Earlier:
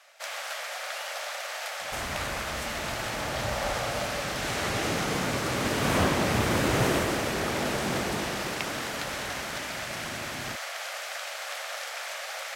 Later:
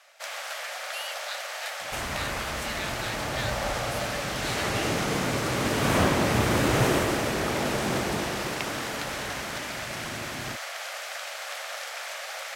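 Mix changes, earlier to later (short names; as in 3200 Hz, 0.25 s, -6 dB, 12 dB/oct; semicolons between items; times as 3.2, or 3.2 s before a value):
speech +10.0 dB; second sound: send +10.5 dB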